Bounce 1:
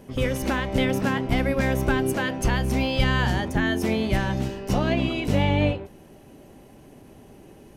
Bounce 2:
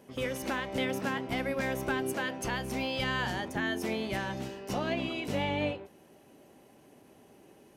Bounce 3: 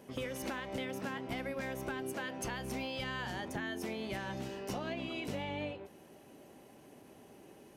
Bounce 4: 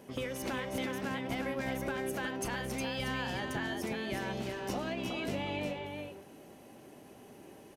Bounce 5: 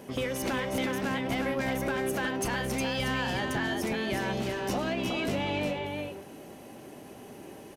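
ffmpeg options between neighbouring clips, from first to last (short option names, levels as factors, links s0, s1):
-af "highpass=f=310:p=1,volume=0.501"
-af "acompressor=threshold=0.0141:ratio=6,volume=1.12"
-af "aecho=1:1:362:0.562,volume=1.26"
-af "asoftclip=type=tanh:threshold=0.0376,volume=2.24"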